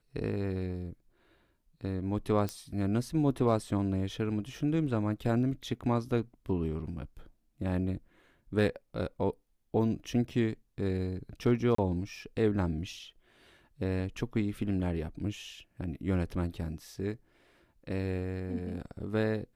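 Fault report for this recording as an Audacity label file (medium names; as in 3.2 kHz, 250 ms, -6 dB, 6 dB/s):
2.490000	2.490000	pop -20 dBFS
11.750000	11.780000	dropout 34 ms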